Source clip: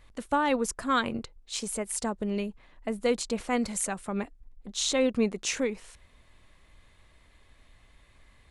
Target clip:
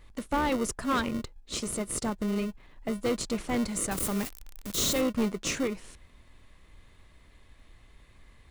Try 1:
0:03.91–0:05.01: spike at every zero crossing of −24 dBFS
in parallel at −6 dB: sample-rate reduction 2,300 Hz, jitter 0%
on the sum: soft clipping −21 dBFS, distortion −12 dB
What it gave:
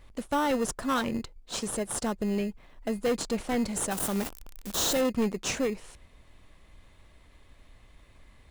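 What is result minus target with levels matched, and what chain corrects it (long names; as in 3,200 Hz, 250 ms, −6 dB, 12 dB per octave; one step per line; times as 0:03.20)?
sample-rate reduction: distortion −13 dB
0:03.91–0:05.01: spike at every zero crossing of −24 dBFS
in parallel at −6 dB: sample-rate reduction 830 Hz, jitter 0%
on the sum: soft clipping −21 dBFS, distortion −13 dB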